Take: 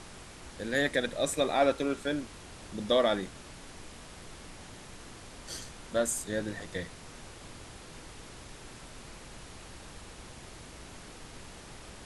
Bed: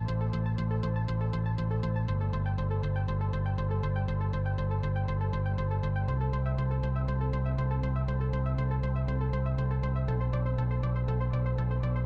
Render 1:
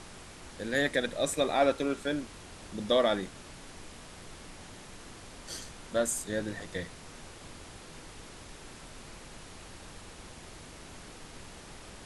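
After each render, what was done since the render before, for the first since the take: de-hum 60 Hz, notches 2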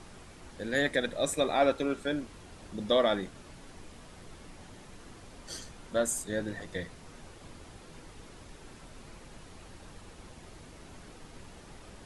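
noise reduction 6 dB, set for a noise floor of -49 dBFS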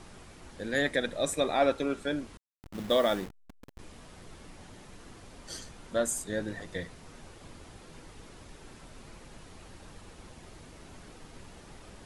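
2.37–3.79 s: send-on-delta sampling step -39 dBFS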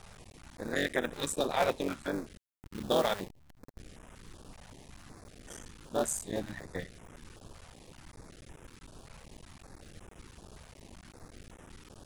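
cycle switcher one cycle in 3, muted; step-sequenced notch 5.3 Hz 310–4400 Hz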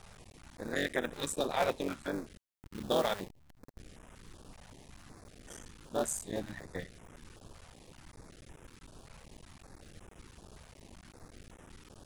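trim -2 dB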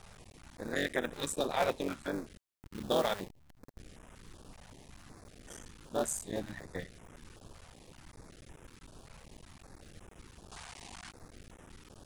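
10.51–11.11 s: time-frequency box 680–10000 Hz +11 dB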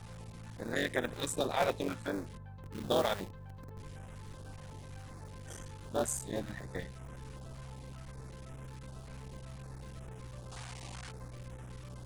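add bed -19 dB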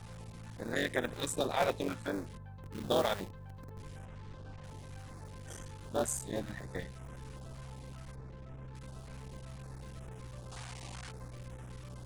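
4.05–4.64 s: distance through air 120 m; 8.15–8.75 s: tape spacing loss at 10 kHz 22 dB

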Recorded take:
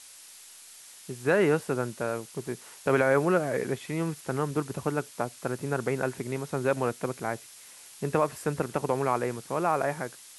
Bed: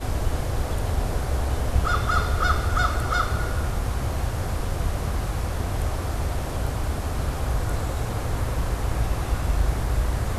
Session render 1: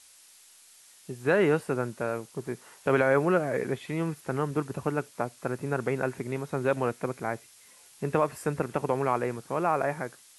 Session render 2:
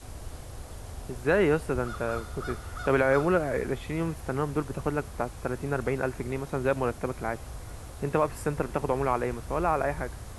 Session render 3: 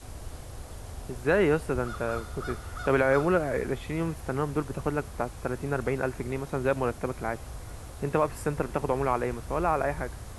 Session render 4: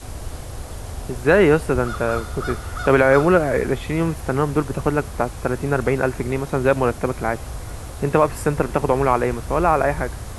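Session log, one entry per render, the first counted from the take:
noise print and reduce 6 dB
add bed -16 dB
no audible change
trim +9 dB; peak limiter -3 dBFS, peak gain reduction 1 dB

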